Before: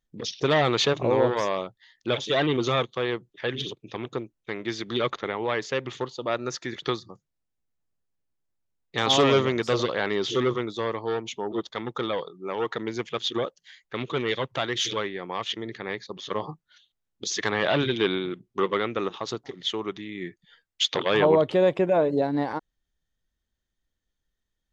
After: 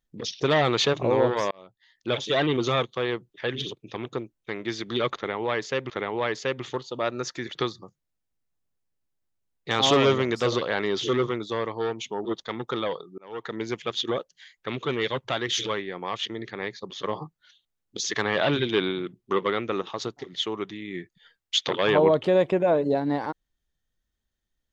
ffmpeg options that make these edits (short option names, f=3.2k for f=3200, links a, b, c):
-filter_complex "[0:a]asplit=4[a][b][c][d];[a]atrim=end=1.51,asetpts=PTS-STARTPTS,afade=t=out:st=1.506:d=0.004:c=hsin[e];[b]atrim=start=1.51:end=5.902,asetpts=PTS-STARTPTS,afade=t=in:d=0.66[f];[c]atrim=start=5.168:end=12.45,asetpts=PTS-STARTPTS,afade=t=out:st=7.278:d=0.004:c=hsin[g];[d]atrim=start=12.45,asetpts=PTS-STARTPTS,afade=t=in:d=0.44[h];[e][f]concat=n=2:v=0:a=1[i];[g][h]concat=n=2:v=0:a=1[j];[i][j]acrossfade=d=0.004:c1=hsin:c2=hsin"